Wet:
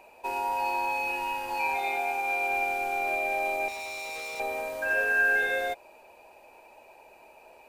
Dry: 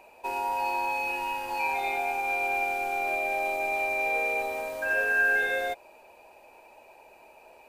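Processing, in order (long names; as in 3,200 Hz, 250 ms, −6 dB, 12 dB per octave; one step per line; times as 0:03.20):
0:01.77–0:02.51: low-shelf EQ 130 Hz −8.5 dB
0:03.68–0:04.40: hard clipping −36 dBFS, distortion −11 dB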